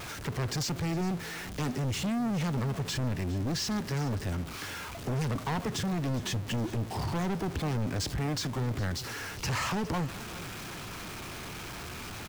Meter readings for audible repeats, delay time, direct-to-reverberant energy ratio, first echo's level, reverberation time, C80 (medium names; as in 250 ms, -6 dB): 1, 410 ms, no reverb, -17.5 dB, no reverb, no reverb